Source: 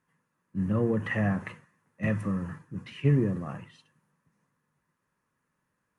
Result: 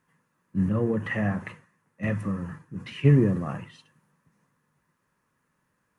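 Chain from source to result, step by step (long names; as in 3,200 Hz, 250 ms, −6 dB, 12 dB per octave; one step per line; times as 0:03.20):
0:00.69–0:02.80: flanger 1.3 Hz, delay 0.2 ms, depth 6.8 ms, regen −72%
level +5 dB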